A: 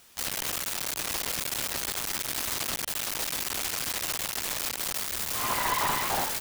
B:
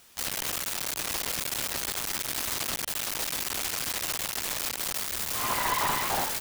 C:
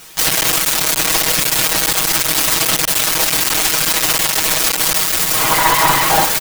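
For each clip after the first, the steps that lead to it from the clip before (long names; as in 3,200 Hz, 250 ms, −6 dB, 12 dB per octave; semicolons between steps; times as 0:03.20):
no processing that can be heard
in parallel at +1.5 dB: speech leveller; on the sum: comb filter 6.3 ms, depth 94%; level +6.5 dB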